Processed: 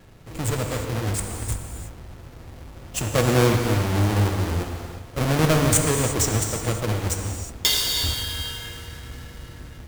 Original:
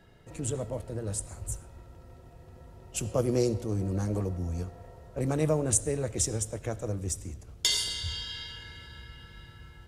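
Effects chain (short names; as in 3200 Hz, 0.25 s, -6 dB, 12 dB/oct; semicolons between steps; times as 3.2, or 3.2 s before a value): half-waves squared off; non-linear reverb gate 0.38 s flat, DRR 3 dB; vibrato 0.78 Hz 11 cents; gain +2.5 dB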